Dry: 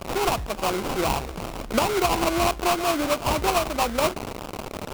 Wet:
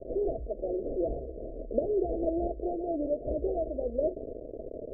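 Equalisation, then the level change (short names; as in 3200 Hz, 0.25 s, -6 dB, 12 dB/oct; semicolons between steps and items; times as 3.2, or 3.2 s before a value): rippled Chebyshev low-pass 670 Hz, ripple 3 dB; bell 91 Hz -14.5 dB 0.49 oct; fixed phaser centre 440 Hz, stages 4; 0.0 dB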